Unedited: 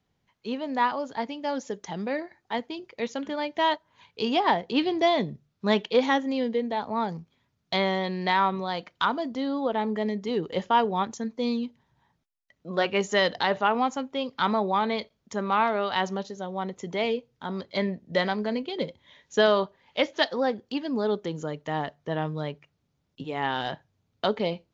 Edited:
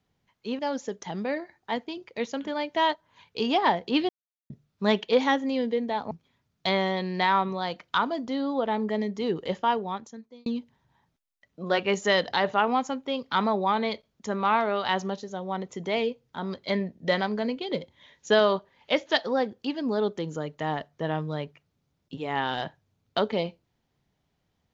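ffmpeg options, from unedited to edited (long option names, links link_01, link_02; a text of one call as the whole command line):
ffmpeg -i in.wav -filter_complex "[0:a]asplit=6[link_01][link_02][link_03][link_04][link_05][link_06];[link_01]atrim=end=0.592[link_07];[link_02]atrim=start=1.408:end=4.91,asetpts=PTS-STARTPTS,afade=type=out:start_time=3.498:duration=0.004:curve=hsin[link_08];[link_03]atrim=start=4.91:end=5.32,asetpts=PTS-STARTPTS,volume=0[link_09];[link_04]atrim=start=5.32:end=6.932,asetpts=PTS-STARTPTS,afade=type=in:duration=0.004:curve=hsin[link_10];[link_05]atrim=start=7.178:end=11.53,asetpts=PTS-STARTPTS,afade=type=out:start_time=3.282:duration=1.07[link_11];[link_06]atrim=start=11.53,asetpts=PTS-STARTPTS,afade=type=in:duration=0.004:curve=hsin[link_12];[link_08][link_09][link_10]concat=n=3:v=0:a=1[link_13];[link_07][link_13]acrossfade=duration=0.004:curve1=hsin:curve2=hsin[link_14];[link_11][link_12]concat=n=2:v=0:a=1[link_15];[link_14][link_15]acrossfade=duration=0.004:curve1=hsin:curve2=hsin" out.wav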